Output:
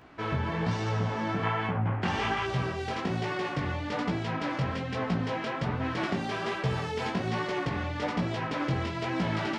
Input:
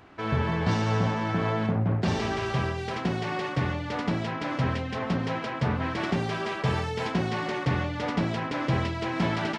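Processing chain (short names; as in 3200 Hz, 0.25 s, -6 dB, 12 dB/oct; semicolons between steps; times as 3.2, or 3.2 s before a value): spectral gain 1.43–2.46, 750–3500 Hz +8 dB; compressor, threshold -25 dBFS, peak gain reduction 6.5 dB; chorus 1.2 Hz, delay 15.5 ms, depth 6.3 ms; gain +2.5 dB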